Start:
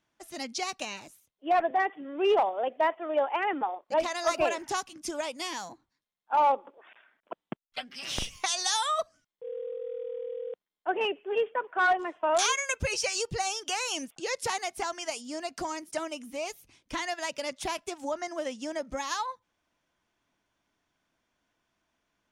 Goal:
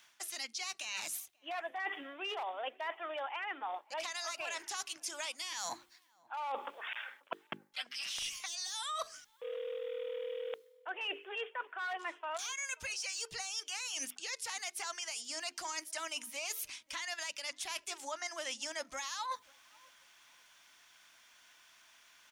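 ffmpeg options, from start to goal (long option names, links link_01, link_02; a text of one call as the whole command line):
ffmpeg -i in.wav -filter_complex "[0:a]tiltshelf=frequency=880:gain=-9,bandreject=frequency=50:width_type=h:width=6,bandreject=frequency=100:width_type=h:width=6,bandreject=frequency=150:width_type=h:width=6,bandreject=frequency=200:width_type=h:width=6,bandreject=frequency=250:width_type=h:width=6,bandreject=frequency=300:width_type=h:width=6,bandreject=frequency=350:width_type=h:width=6,bandreject=frequency=400:width_type=h:width=6,bandreject=frequency=450:width_type=h:width=6,acrossover=split=740[link_01][link_02];[link_02]acontrast=73[link_03];[link_01][link_03]amix=inputs=2:normalize=0,alimiter=limit=-19dB:level=0:latency=1:release=151,areverse,acompressor=threshold=-42dB:ratio=12,areverse,asplit=2[link_04][link_05];[link_05]adelay=537,lowpass=frequency=1100:poles=1,volume=-23.5dB,asplit=2[link_06][link_07];[link_07]adelay=537,lowpass=frequency=1100:poles=1,volume=0.37[link_08];[link_04][link_06][link_08]amix=inputs=3:normalize=0,volume=5dB" out.wav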